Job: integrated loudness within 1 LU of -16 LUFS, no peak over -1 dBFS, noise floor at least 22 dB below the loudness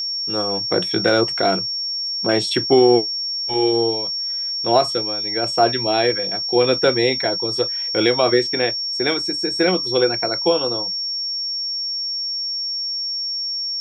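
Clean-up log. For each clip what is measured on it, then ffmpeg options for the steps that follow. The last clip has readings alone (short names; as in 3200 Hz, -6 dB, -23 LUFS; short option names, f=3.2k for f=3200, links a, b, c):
steady tone 5500 Hz; tone level -22 dBFS; loudness -19.0 LUFS; peak -3.0 dBFS; loudness target -16.0 LUFS
-> -af "bandreject=f=5.5k:w=30"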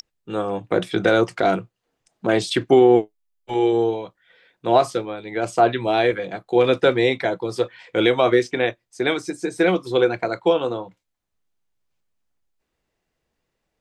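steady tone none; loudness -20.5 LUFS; peak -3.5 dBFS; loudness target -16.0 LUFS
-> -af "volume=4.5dB,alimiter=limit=-1dB:level=0:latency=1"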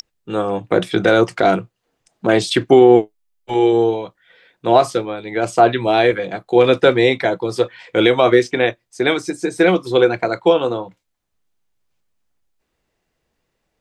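loudness -16.0 LUFS; peak -1.0 dBFS; noise floor -74 dBFS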